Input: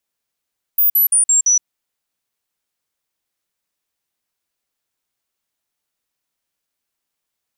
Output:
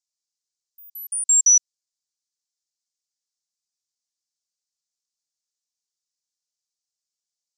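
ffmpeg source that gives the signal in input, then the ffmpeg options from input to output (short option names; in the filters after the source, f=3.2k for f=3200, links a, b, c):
-f lavfi -i "aevalsrc='0.316*clip(min(mod(t,0.17),0.12-mod(t,0.17))/0.005,0,1)*sin(2*PI*14900*pow(2,-floor(t/0.17)/3)*mod(t,0.17))':d=0.85:s=44100"
-af "asuperpass=centerf=5900:order=4:qfactor=1.9"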